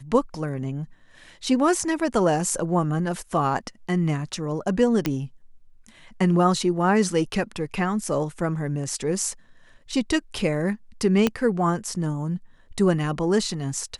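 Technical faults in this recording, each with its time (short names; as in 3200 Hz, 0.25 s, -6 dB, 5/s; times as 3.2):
5.06 pop -9 dBFS
11.27 pop -7 dBFS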